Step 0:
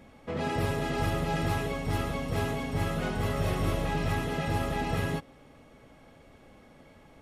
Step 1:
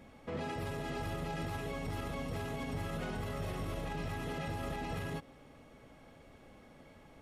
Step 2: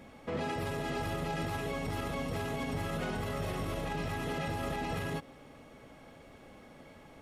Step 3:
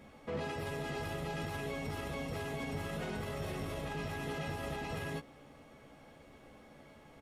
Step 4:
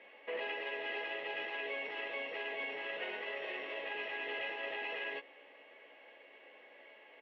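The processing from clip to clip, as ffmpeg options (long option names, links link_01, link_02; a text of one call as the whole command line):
ffmpeg -i in.wav -af "alimiter=level_in=4dB:limit=-24dB:level=0:latency=1:release=68,volume=-4dB,volume=-2.5dB" out.wav
ffmpeg -i in.wav -af "lowshelf=frequency=110:gain=-5,volume=4.5dB" out.wav
ffmpeg -i in.wav -filter_complex "[0:a]asplit=2[link_01][link_02];[link_02]adelay=14,volume=-7dB[link_03];[link_01][link_03]amix=inputs=2:normalize=0,volume=-4dB" out.wav
ffmpeg -i in.wav -af "highpass=frequency=420:width=0.5412,highpass=frequency=420:width=1.3066,equalizer=frequency=760:width_type=q:width=4:gain=-4,equalizer=frequency=1300:width_type=q:width=4:gain=-10,equalizer=frequency=1900:width_type=q:width=4:gain=9,equalizer=frequency=2800:width_type=q:width=4:gain=10,lowpass=frequency=3100:width=0.5412,lowpass=frequency=3100:width=1.3066,volume=1dB" out.wav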